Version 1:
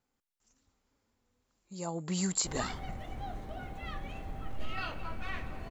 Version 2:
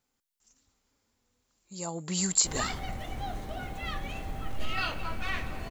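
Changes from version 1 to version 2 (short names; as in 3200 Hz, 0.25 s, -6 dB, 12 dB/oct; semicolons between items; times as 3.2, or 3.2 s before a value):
background +4.0 dB; master: add high shelf 2800 Hz +8.5 dB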